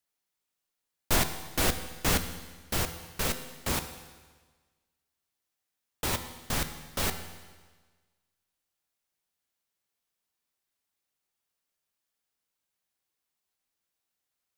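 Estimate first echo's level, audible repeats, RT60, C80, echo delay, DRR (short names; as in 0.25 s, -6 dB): none, none, 1.4 s, 11.5 dB, none, 8.0 dB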